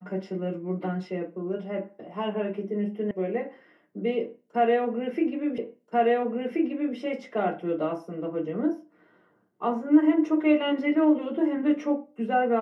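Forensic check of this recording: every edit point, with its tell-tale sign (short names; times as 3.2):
3.11 sound cut off
5.58 repeat of the last 1.38 s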